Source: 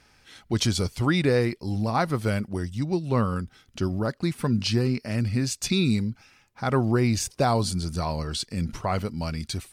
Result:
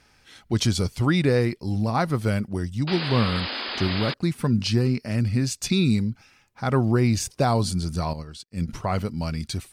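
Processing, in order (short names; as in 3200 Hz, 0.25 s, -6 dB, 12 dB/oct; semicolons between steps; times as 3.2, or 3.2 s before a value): 2.87–4.14 painted sound noise 210–5100 Hz -31 dBFS; dynamic EQ 140 Hz, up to +3 dB, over -36 dBFS, Q 0.74; 8.13–8.68 upward expander 2.5:1, over -47 dBFS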